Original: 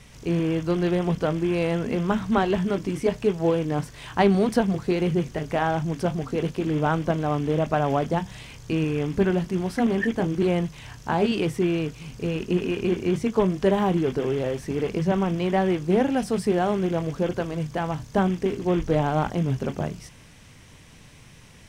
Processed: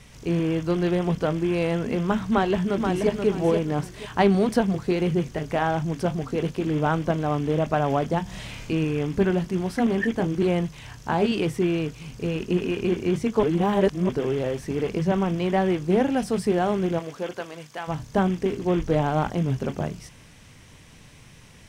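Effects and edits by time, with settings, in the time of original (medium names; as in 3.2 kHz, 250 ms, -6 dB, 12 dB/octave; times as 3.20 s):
2.29–3.11 s: echo throw 480 ms, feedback 25%, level -5.5 dB
8.23–8.63 s: reverb throw, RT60 0.84 s, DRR -3.5 dB
13.43–14.09 s: reverse
16.98–17.87 s: high-pass 490 Hz -> 1.4 kHz 6 dB/octave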